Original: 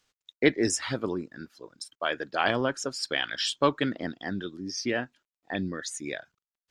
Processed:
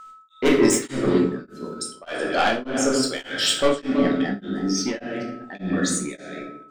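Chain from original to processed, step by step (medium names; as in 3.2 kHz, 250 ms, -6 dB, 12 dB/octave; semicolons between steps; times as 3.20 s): chunks repeated in reverse 201 ms, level -12.5 dB; graphic EQ with 31 bands 100 Hz -10 dB, 250 Hz +6 dB, 1 kHz -5 dB, 5 kHz -4 dB, 8 kHz +7 dB; saturation -21.5 dBFS, distortion -9 dB; on a send: band-passed feedback delay 94 ms, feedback 69%, band-pass 350 Hz, level -12 dB; on the sum: simulated room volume 170 m³, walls mixed, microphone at 1.2 m; whistle 1.3 kHz -47 dBFS; tremolo of two beating tones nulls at 1.7 Hz; trim +7 dB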